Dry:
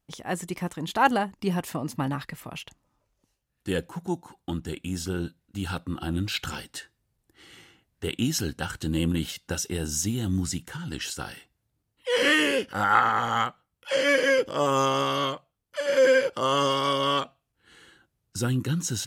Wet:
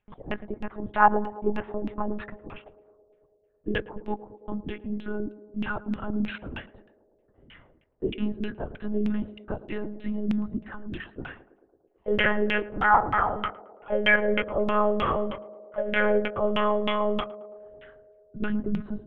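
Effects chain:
one-pitch LPC vocoder at 8 kHz 210 Hz
auto-filter low-pass saw down 3.2 Hz 240–2,800 Hz
feedback echo with a band-pass in the loop 110 ms, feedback 82%, band-pass 480 Hz, level −15.5 dB
level −1.5 dB

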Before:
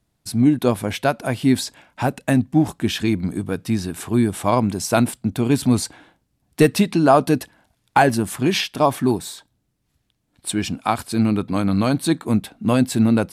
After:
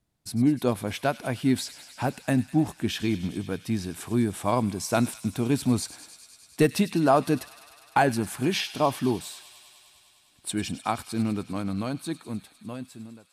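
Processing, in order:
fade-out on the ending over 2.63 s
delay with a high-pass on its return 101 ms, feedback 83%, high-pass 2,300 Hz, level −13 dB
level −6.5 dB

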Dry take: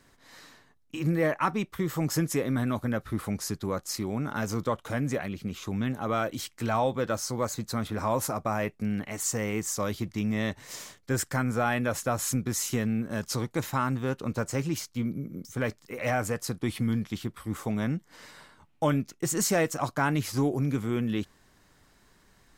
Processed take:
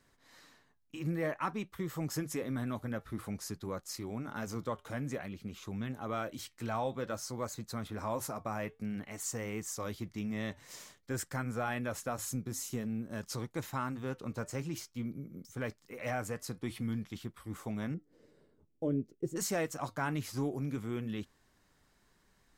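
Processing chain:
0:17.94–0:19.36: drawn EQ curve 210 Hz 0 dB, 420 Hz +8 dB, 930 Hz −18 dB
flanger 0.52 Hz, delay 1.5 ms, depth 4.6 ms, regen −84%
0:12.25–0:13.13: parametric band 2,000 Hz −5.5 dB 2.2 octaves
level −4 dB

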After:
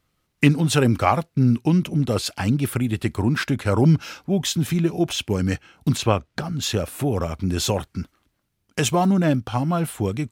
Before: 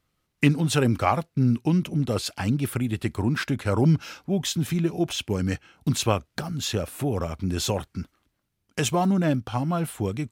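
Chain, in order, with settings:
0:05.96–0:06.61: high-shelf EQ 5,700 Hz → 8,400 Hz −11.5 dB
level +3.5 dB

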